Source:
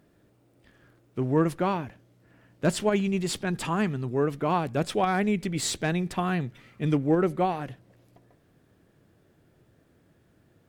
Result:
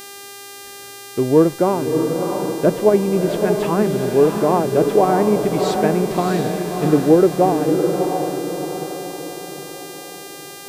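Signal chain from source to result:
parametric band 450 Hz +12 dB 1.9 octaves
treble cut that deepens with the level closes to 1,500 Hz, closed at −14.5 dBFS
feedback delay with all-pass diffusion 654 ms, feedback 49%, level −4.5 dB
hum with harmonics 400 Hz, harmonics 37, −38 dBFS −2 dB per octave
level +1 dB

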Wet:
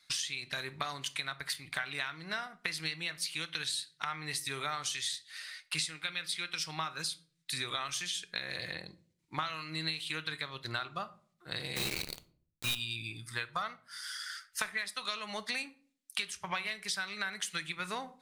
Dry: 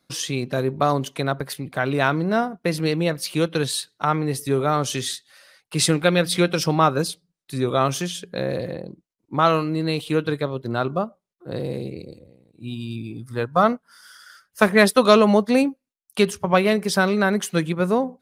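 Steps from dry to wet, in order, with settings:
octave-band graphic EQ 125/250/500/2,000/4,000/8,000 Hz −8/−11/−12/+11/+9/+9 dB
downward compressor 20 to 1, threshold −28 dBFS, peak gain reduction 26.5 dB
0:11.76–0:12.75: log-companded quantiser 2 bits
rectangular room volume 520 cubic metres, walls furnished, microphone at 0.49 metres
level −4.5 dB

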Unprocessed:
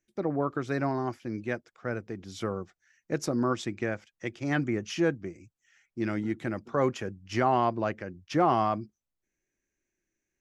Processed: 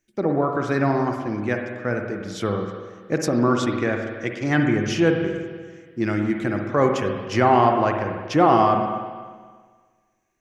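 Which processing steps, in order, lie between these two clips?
spring reverb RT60 1.6 s, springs 48/58 ms, chirp 75 ms, DRR 3 dB
level +7 dB

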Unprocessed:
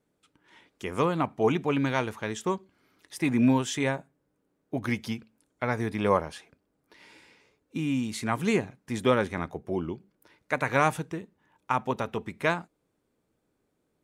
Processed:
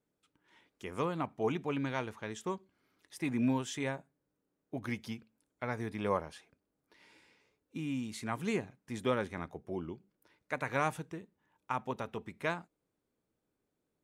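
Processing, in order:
0:01.77–0:02.31: high-shelf EQ 9,700 Hz −6.5 dB
level −8.5 dB

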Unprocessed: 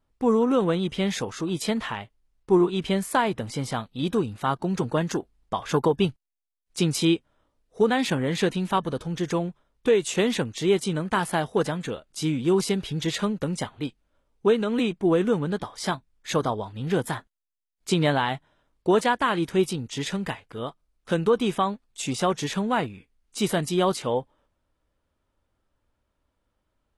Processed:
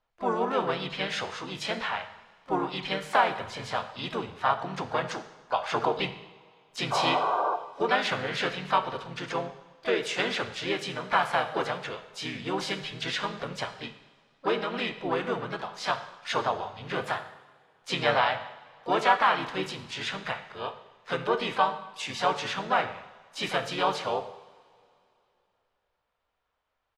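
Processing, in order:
sound drawn into the spectrogram noise, 0:06.91–0:07.56, 360–1,200 Hz −26 dBFS
three-way crossover with the lows and the highs turned down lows −15 dB, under 580 Hz, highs −21 dB, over 5,200 Hz
de-essing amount 45%
pitch-shifted copies added −4 semitones −3 dB, +5 semitones −11 dB
parametric band 320 Hz −5.5 dB 0.5 octaves
coupled-rooms reverb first 0.86 s, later 3 s, from −18 dB, DRR 8.5 dB

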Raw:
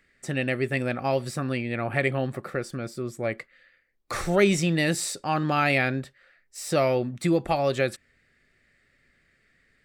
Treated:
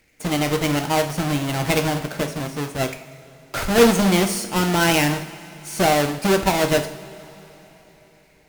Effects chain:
each half-wave held at its own peak
speed change +16%
coupled-rooms reverb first 0.54 s, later 4 s, from −18 dB, DRR 5.5 dB

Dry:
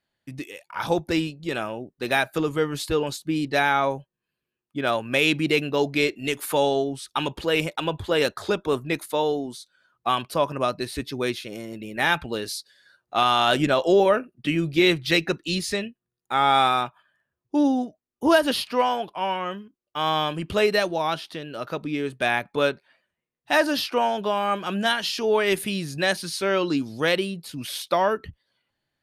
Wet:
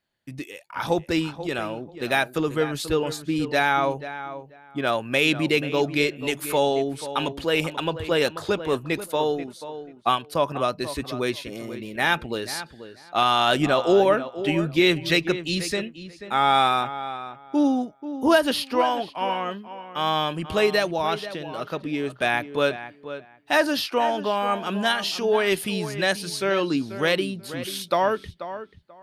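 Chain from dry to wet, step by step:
0:09.29–0:10.36: transient designer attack +3 dB, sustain −6 dB
feedback echo with a low-pass in the loop 486 ms, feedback 19%, low-pass 2,500 Hz, level −12 dB

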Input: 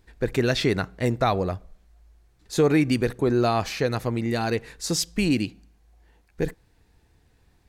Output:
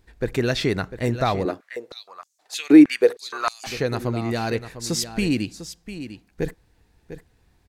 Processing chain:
single-tap delay 699 ms −12 dB
0:01.45–0:03.67: high-pass on a step sequencer 6.4 Hz 300–6,500 Hz

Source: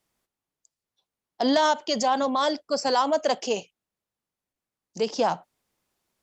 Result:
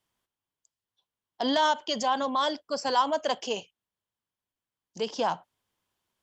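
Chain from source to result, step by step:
thirty-one-band graphic EQ 100 Hz +8 dB, 1,000 Hz +6 dB, 1,600 Hz +4 dB, 3,150 Hz +8 dB
level −5.5 dB

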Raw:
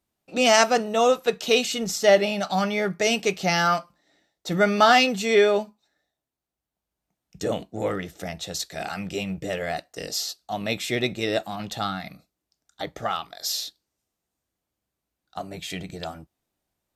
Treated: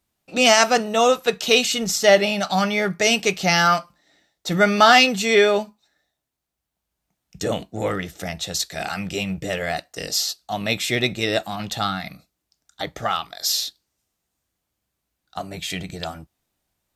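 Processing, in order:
parametric band 400 Hz −4.5 dB 2.5 octaves
boost into a limiter +7 dB
level −1 dB

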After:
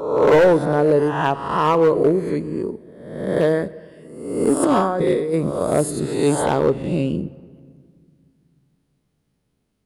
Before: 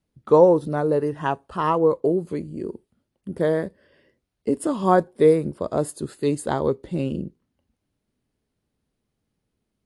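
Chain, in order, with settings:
peak hold with a rise ahead of every peak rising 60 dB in 0.91 s
0:04.63–0:05.34: compressor whose output falls as the input rises −22 dBFS, ratio −1
gain into a clipping stage and back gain 12.5 dB
rectangular room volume 3,300 cubic metres, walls mixed, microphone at 0.32 metres
level +3 dB

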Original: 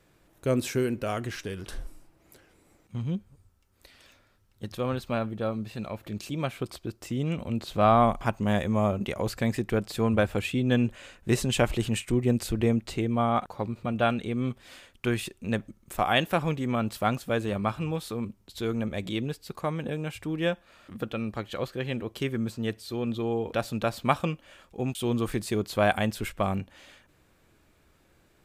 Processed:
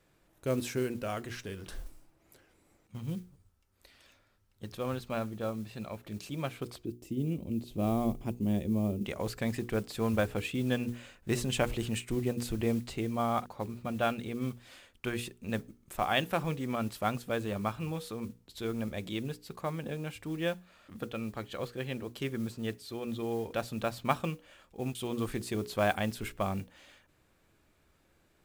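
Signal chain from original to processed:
mains-hum notches 60/120/180/240/300/360/420/480 Hz
noise that follows the level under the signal 24 dB
0:06.85–0:09.05: drawn EQ curve 120 Hz 0 dB, 350 Hz +5 dB, 540 Hz −6 dB, 1,500 Hz −19 dB, 2,600 Hz −8 dB, 4,000 Hz −9 dB, 8,400 Hz −6 dB, 12,000 Hz −2 dB
level −5 dB

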